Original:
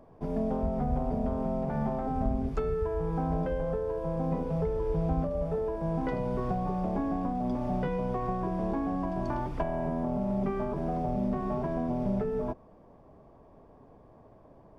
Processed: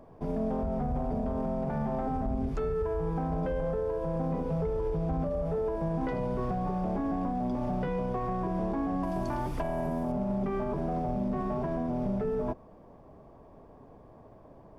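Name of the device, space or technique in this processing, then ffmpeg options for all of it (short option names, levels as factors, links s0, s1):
soft clipper into limiter: -filter_complex "[0:a]asettb=1/sr,asplit=3[s0][s1][s2];[s0]atrim=end=9.034[s3];[s1]atrim=start=9.03:end=10.12,asetpts=PTS-STARTPTS,afade=t=in:d=0.004:c=qsin,afade=t=out:st=1.086:d=0.004:c=qsin,aemphasis=mode=production:type=50fm[s4];[s2]atrim=start=10.116[s5];[s3][s4]acrossfade=d=0.004:c1=hsin:c2=qsin[s6];[s6][s5]acrossfade=d=0.004:c1=qsin:c2=hsin,asoftclip=type=tanh:threshold=0.0944,alimiter=level_in=1.33:limit=0.0631:level=0:latency=1,volume=0.75,volume=1.33"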